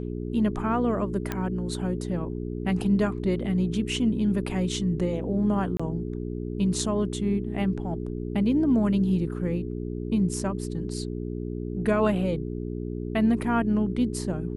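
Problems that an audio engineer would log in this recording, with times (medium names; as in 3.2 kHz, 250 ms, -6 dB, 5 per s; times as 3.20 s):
hum 60 Hz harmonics 7 -32 dBFS
1.32 s: pop -14 dBFS
5.77–5.79 s: dropout 25 ms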